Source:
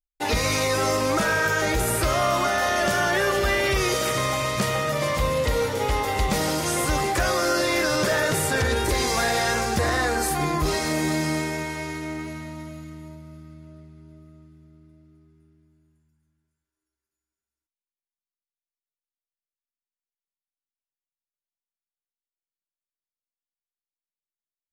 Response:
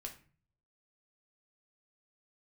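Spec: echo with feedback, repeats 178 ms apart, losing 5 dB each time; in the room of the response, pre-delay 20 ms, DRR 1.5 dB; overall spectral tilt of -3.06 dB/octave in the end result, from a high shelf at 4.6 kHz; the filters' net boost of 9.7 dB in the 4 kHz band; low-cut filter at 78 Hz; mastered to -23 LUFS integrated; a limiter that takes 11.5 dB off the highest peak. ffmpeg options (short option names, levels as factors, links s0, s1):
-filter_complex "[0:a]highpass=78,equalizer=f=4000:t=o:g=8,highshelf=f=4600:g=7.5,alimiter=limit=0.158:level=0:latency=1,aecho=1:1:178|356|534|712|890|1068|1246:0.562|0.315|0.176|0.0988|0.0553|0.031|0.0173,asplit=2[s0][s1];[1:a]atrim=start_sample=2205,adelay=20[s2];[s1][s2]afir=irnorm=-1:irlink=0,volume=1.26[s3];[s0][s3]amix=inputs=2:normalize=0,volume=0.708"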